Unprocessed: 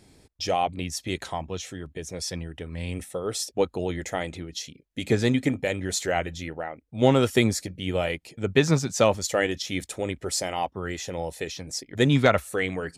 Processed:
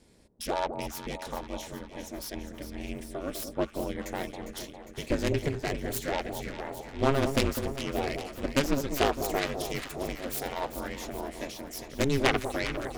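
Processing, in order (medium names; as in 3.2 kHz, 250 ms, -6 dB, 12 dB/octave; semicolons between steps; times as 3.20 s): self-modulated delay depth 0.31 ms; ring modulator 140 Hz; echo whose repeats swap between lows and highs 202 ms, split 1 kHz, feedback 77%, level -7.5 dB; trim -2.5 dB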